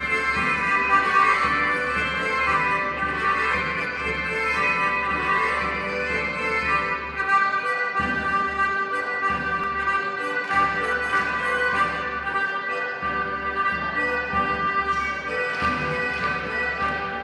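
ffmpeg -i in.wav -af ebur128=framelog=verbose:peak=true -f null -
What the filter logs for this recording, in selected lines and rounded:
Integrated loudness:
  I:         -22.4 LUFS
  Threshold: -32.4 LUFS
Loudness range:
  LRA:         3.3 LU
  Threshold: -42.6 LUFS
  LRA low:   -23.8 LUFS
  LRA high:  -20.5 LUFS
True peak:
  Peak:       -7.1 dBFS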